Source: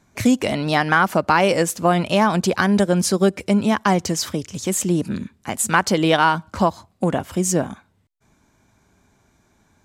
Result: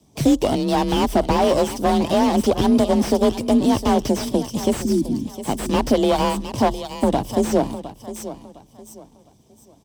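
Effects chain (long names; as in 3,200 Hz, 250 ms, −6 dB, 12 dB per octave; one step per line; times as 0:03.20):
lower of the sound and its delayed copy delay 0.36 ms
healed spectral selection 0:04.79–0:05.24, 360–4,200 Hz after
flat-topped bell 1,800 Hz −13 dB 1.3 octaves
harmonic and percussive parts rebalanced harmonic −5 dB
in parallel at +1 dB: brickwall limiter −15 dBFS, peak gain reduction 7 dB
on the sum: frequency shifter +34 Hz
on a send: repeating echo 709 ms, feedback 30%, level −14 dB
on the sum: slew-rate limiting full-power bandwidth 180 Hz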